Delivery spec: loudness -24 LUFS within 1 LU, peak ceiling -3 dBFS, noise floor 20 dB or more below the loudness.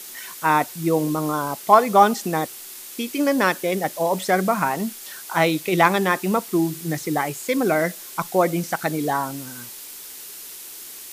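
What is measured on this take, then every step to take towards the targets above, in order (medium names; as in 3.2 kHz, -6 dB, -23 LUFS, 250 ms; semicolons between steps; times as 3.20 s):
noise floor -39 dBFS; noise floor target -42 dBFS; loudness -21.5 LUFS; peak level -2.5 dBFS; loudness target -24.0 LUFS
-> noise reduction 6 dB, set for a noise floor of -39 dBFS; trim -2.5 dB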